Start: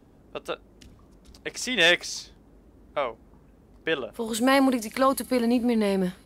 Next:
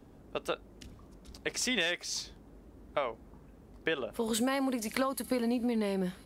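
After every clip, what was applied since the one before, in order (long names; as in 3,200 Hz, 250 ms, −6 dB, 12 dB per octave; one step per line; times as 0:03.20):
downward compressor 16 to 1, threshold −27 dBFS, peak gain reduction 13.5 dB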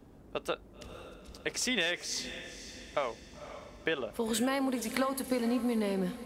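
feedback delay with all-pass diffusion 520 ms, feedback 43%, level −12 dB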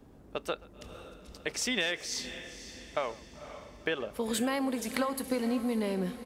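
far-end echo of a speakerphone 130 ms, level −21 dB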